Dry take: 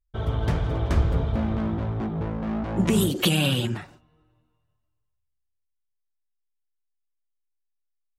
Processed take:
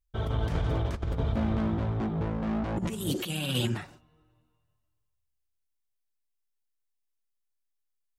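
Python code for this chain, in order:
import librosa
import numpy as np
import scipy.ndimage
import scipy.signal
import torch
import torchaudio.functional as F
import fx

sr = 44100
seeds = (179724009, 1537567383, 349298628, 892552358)

y = fx.high_shelf(x, sr, hz=3900.0, db=4.0)
y = fx.over_compress(y, sr, threshold_db=-24.0, ratio=-0.5)
y = F.gain(torch.from_numpy(y), -3.5).numpy()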